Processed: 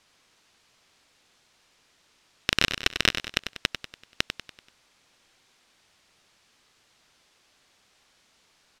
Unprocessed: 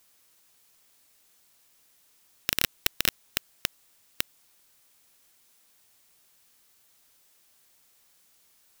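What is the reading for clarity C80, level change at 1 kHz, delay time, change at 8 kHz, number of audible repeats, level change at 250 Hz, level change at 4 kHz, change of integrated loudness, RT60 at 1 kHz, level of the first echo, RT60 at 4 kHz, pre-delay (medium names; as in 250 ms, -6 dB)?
no reverb, +7.0 dB, 96 ms, -2.0 dB, 5, +6.5 dB, +5.5 dB, +2.5 dB, no reverb, -9.0 dB, no reverb, no reverb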